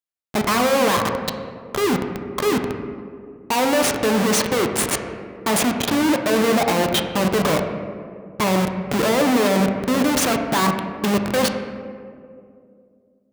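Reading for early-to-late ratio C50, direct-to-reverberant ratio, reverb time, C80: 6.0 dB, 4.0 dB, 2.4 s, 7.5 dB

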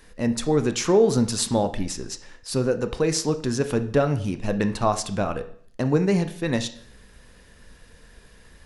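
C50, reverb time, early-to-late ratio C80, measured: 13.5 dB, 0.55 s, 17.5 dB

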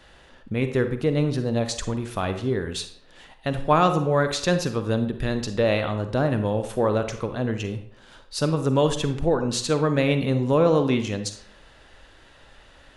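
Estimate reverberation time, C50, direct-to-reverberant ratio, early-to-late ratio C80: 0.65 s, 9.5 dB, 8.0 dB, 12.5 dB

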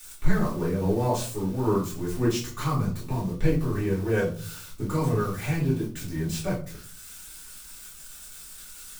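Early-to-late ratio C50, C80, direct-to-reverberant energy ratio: 6.5 dB, 12.0 dB, -10.5 dB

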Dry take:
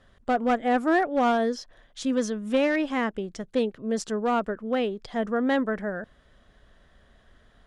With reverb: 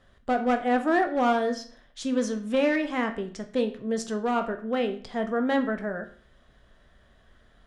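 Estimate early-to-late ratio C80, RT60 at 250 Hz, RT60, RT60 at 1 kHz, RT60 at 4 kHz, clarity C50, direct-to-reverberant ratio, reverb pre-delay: 16.0 dB, 0.50 s, 0.50 s, 0.50 s, 0.40 s, 12.0 dB, 6.0 dB, 12 ms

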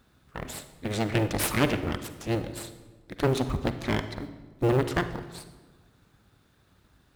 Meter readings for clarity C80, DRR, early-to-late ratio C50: 13.0 dB, 10.0 dB, 11.0 dB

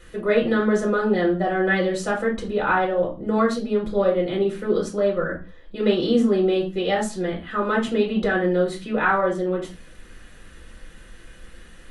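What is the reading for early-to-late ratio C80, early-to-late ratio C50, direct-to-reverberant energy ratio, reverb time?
15.0 dB, 8.5 dB, -3.0 dB, no single decay rate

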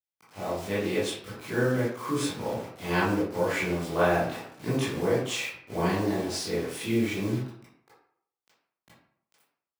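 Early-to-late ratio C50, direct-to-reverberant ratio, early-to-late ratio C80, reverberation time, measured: 0.0 dB, -11.5 dB, 5.5 dB, 0.65 s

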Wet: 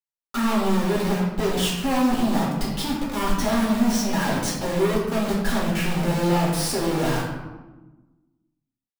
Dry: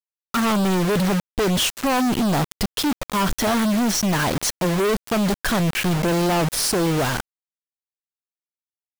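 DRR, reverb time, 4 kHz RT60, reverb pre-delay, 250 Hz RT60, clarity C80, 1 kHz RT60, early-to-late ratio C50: -6.5 dB, 1.2 s, 0.65 s, 3 ms, 1.8 s, 4.0 dB, 1.1 s, 1.5 dB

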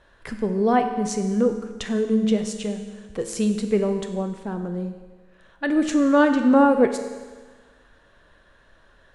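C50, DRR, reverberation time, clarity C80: 8.0 dB, 6.0 dB, 1.4 s, 9.5 dB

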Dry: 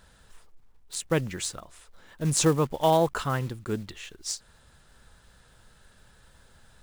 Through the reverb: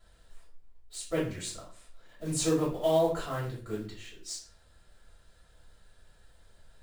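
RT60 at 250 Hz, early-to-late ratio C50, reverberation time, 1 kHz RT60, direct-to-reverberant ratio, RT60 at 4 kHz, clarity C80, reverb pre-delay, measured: 0.55 s, 6.0 dB, 0.45 s, 0.40 s, -9.0 dB, 0.35 s, 11.0 dB, 3 ms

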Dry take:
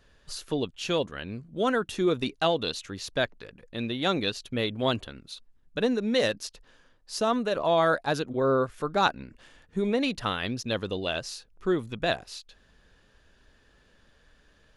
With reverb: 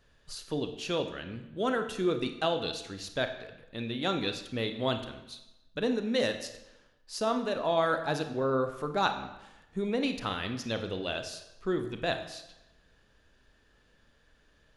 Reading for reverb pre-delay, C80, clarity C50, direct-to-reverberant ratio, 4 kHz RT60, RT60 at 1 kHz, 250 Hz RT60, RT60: 30 ms, 11.5 dB, 9.5 dB, 7.0 dB, 0.80 s, 0.95 s, 0.95 s, 0.95 s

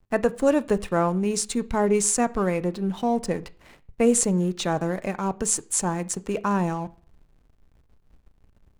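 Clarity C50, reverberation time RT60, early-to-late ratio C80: 22.0 dB, 0.45 s, 26.0 dB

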